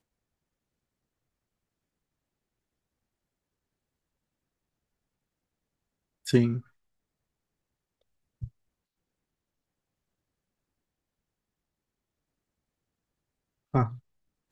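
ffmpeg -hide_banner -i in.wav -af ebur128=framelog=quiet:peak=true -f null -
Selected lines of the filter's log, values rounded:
Integrated loudness:
  I:         -28.0 LUFS
  Threshold: -40.0 LUFS
Loudness range:
  LRA:        19.9 LU
  Threshold: -56.3 LUFS
  LRA low:   -53.6 LUFS
  LRA high:  -33.7 LUFS
True peak:
  Peak:       -9.7 dBFS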